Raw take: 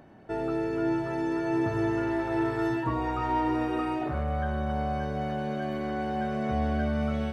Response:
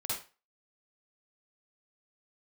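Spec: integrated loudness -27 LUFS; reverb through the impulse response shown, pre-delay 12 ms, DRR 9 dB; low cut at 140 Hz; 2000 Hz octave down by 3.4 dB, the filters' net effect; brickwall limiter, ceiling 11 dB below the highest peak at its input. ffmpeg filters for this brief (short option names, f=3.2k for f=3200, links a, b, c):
-filter_complex "[0:a]highpass=140,equalizer=f=2k:t=o:g=-4.5,alimiter=level_in=4.5dB:limit=-24dB:level=0:latency=1,volume=-4.5dB,asplit=2[a][b];[1:a]atrim=start_sample=2205,adelay=12[c];[b][c]afir=irnorm=-1:irlink=0,volume=-12.5dB[d];[a][d]amix=inputs=2:normalize=0,volume=8dB"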